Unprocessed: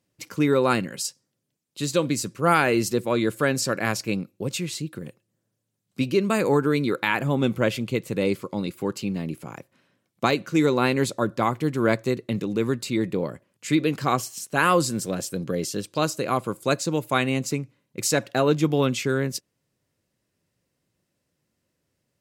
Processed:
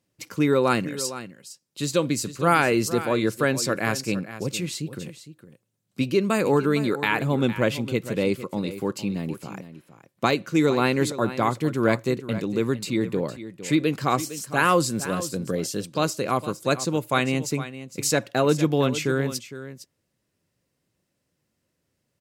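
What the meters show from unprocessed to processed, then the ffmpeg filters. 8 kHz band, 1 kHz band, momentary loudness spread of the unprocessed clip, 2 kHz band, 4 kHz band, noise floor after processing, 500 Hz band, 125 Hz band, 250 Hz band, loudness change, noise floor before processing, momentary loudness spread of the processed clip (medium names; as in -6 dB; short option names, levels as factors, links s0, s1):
0.0 dB, 0.0 dB, 10 LU, 0.0 dB, 0.0 dB, -77 dBFS, 0.0 dB, 0.0 dB, 0.0 dB, 0.0 dB, -78 dBFS, 11 LU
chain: -af "aecho=1:1:459:0.211"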